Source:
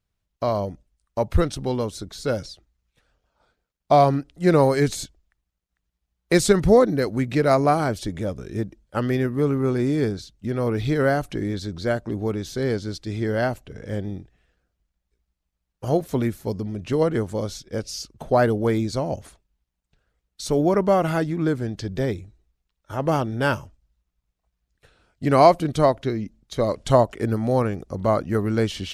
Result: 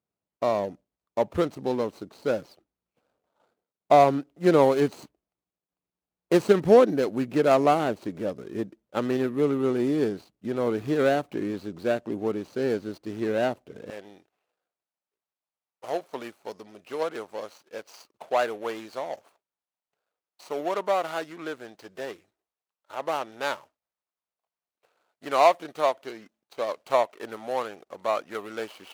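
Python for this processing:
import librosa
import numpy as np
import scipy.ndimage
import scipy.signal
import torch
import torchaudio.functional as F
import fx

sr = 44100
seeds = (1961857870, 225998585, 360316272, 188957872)

y = scipy.signal.medfilt(x, 25)
y = fx.highpass(y, sr, hz=fx.steps((0.0, 250.0), (13.9, 730.0)), slope=12)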